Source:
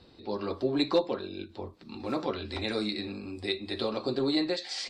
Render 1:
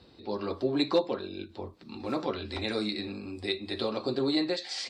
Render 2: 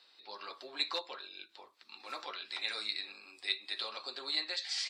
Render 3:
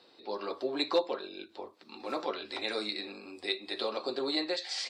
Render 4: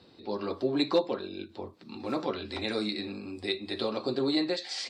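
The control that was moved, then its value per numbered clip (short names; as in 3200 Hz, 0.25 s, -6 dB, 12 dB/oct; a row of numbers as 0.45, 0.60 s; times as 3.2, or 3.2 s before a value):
HPF, cutoff: 41, 1400, 450, 110 Hz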